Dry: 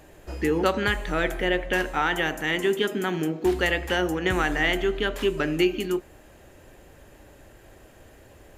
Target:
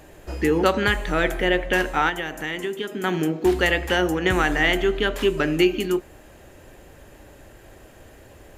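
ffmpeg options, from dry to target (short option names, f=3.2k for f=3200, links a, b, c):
-filter_complex "[0:a]asettb=1/sr,asplit=3[a][b][c];[a]atrim=end=2.094[d];[b]atrim=start=2.09:end=3.04,asetpts=PTS-STARTPTS,afade=t=in:d=0.004:c=qsin,afade=t=out:st=0.946:d=0.004:c=qsin,acompressor=threshold=-30dB:ratio=4[e];[c]atrim=start=3.036[f];[d][e]acrossfade=d=0.004:c1=hsin:c2=qsin[g];[g][f]acrossfade=d=0.004:c1=qsin:c2=hsin,volume=3.5dB"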